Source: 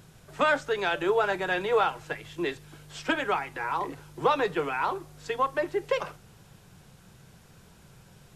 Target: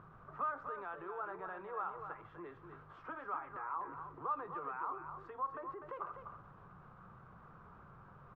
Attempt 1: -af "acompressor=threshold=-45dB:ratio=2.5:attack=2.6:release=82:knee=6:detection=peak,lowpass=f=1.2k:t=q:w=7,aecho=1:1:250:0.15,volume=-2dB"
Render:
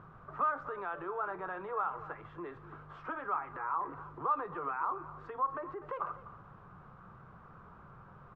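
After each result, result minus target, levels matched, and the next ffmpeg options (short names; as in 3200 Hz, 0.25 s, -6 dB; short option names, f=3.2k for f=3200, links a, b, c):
compressor: peak gain reduction -6.5 dB; echo-to-direct -8.5 dB
-af "acompressor=threshold=-55.5dB:ratio=2.5:attack=2.6:release=82:knee=6:detection=peak,lowpass=f=1.2k:t=q:w=7,aecho=1:1:250:0.15,volume=-2dB"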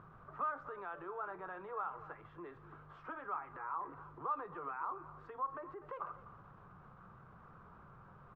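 echo-to-direct -8.5 dB
-af "acompressor=threshold=-55.5dB:ratio=2.5:attack=2.6:release=82:knee=6:detection=peak,lowpass=f=1.2k:t=q:w=7,aecho=1:1:250:0.398,volume=-2dB"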